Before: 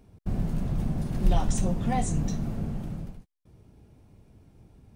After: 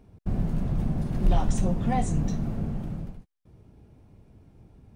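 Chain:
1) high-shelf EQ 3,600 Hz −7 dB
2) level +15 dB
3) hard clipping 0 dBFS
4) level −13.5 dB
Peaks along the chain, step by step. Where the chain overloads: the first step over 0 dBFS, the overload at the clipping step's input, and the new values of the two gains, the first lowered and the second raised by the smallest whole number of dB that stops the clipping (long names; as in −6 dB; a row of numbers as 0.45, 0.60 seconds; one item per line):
−11.5, +3.5, 0.0, −13.5 dBFS
step 2, 3.5 dB
step 2 +11 dB, step 4 −9.5 dB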